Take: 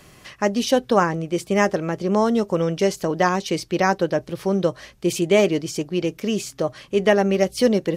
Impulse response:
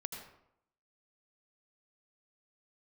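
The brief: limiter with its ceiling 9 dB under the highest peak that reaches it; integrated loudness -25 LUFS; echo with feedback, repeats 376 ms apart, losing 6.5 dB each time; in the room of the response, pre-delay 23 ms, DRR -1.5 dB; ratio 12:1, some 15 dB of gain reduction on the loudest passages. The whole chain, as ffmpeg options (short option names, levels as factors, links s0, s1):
-filter_complex "[0:a]acompressor=threshold=0.0447:ratio=12,alimiter=limit=0.075:level=0:latency=1,aecho=1:1:376|752|1128|1504|1880|2256:0.473|0.222|0.105|0.0491|0.0231|0.0109,asplit=2[s0][s1];[1:a]atrim=start_sample=2205,adelay=23[s2];[s1][s2]afir=irnorm=-1:irlink=0,volume=1.33[s3];[s0][s3]amix=inputs=2:normalize=0,volume=1.5"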